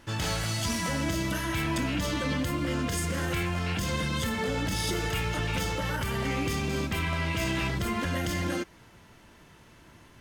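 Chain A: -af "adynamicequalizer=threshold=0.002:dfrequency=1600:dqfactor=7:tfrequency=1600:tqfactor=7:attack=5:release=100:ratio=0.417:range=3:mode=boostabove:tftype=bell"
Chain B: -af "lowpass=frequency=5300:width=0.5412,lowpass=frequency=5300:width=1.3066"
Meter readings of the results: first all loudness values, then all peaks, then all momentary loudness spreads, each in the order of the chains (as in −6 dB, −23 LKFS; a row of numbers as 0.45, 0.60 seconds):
−29.0, −30.0 LKFS; −18.5, −19.5 dBFS; 1, 2 LU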